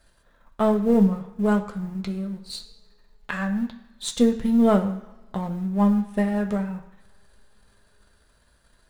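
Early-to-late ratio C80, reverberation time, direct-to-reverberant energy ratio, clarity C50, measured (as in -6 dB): 13.5 dB, 1.3 s, 2.5 dB, 11.0 dB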